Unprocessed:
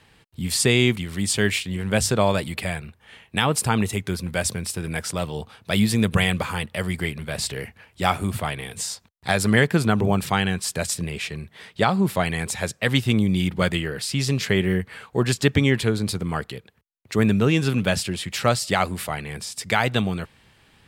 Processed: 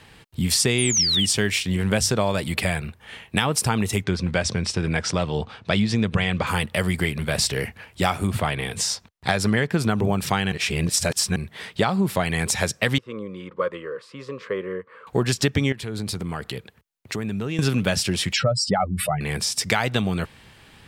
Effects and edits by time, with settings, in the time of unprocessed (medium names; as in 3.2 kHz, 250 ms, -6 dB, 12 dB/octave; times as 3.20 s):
0.78–1.26 s: painted sound fall 2.8–10 kHz -22 dBFS
4.04–6.47 s: Bessel low-pass 4.9 kHz, order 4
8.27–9.79 s: treble shelf 7.5 kHz -8 dB
10.52–11.36 s: reverse
12.98–15.07 s: two resonant band-passes 750 Hz, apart 1.1 oct
15.72–17.59 s: compression 5:1, threshold -32 dBFS
18.33–19.21 s: spectral contrast enhancement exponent 2.6
whole clip: dynamic bell 5.6 kHz, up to +7 dB, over -48 dBFS, Q 4.8; compression 4:1, threshold -25 dBFS; trim +6.5 dB